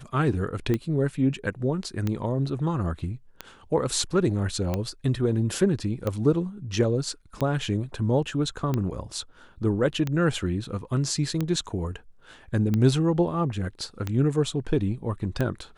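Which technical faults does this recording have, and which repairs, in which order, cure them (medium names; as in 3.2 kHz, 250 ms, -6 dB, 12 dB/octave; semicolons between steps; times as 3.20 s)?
tick 45 rpm -14 dBFS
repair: de-click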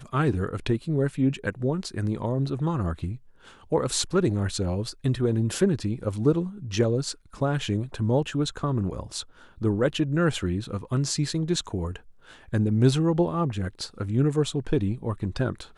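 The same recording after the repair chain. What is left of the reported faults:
nothing left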